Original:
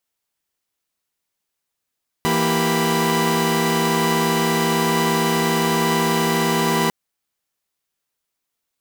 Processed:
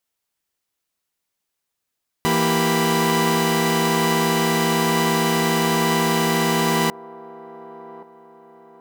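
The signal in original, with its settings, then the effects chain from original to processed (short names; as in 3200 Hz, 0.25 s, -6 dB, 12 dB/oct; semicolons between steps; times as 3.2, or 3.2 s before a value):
chord E3/A#3/G4/B5 saw, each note -20 dBFS 4.65 s
band-limited delay 1.127 s, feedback 39%, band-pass 530 Hz, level -16.5 dB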